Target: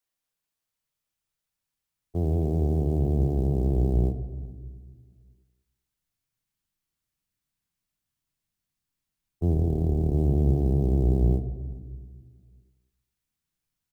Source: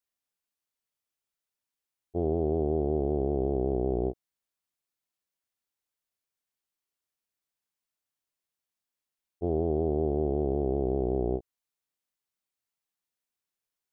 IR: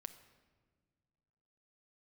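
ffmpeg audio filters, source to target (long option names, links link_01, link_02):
-filter_complex "[0:a]asplit=2[link_01][link_02];[link_02]adelay=414,volume=-29dB,highshelf=frequency=4000:gain=-9.32[link_03];[link_01][link_03]amix=inputs=2:normalize=0,asplit=2[link_04][link_05];[link_05]acompressor=threshold=-42dB:ratio=6,volume=-0.5dB[link_06];[link_04][link_06]amix=inputs=2:normalize=0,asplit=3[link_07][link_08][link_09];[link_07]afade=type=out:start_time=9.53:duration=0.02[link_10];[link_08]tremolo=f=36:d=0.571,afade=type=in:start_time=9.53:duration=0.02,afade=type=out:start_time=10.12:duration=0.02[link_11];[link_09]afade=type=in:start_time=10.12:duration=0.02[link_12];[link_10][link_11][link_12]amix=inputs=3:normalize=0,acrossover=split=140|420[link_13][link_14][link_15];[link_15]acrusher=bits=6:mode=log:mix=0:aa=0.000001[link_16];[link_13][link_14][link_16]amix=inputs=3:normalize=0[link_17];[1:a]atrim=start_sample=2205[link_18];[link_17][link_18]afir=irnorm=-1:irlink=0,asubboost=boost=6:cutoff=190,volume=2.5dB"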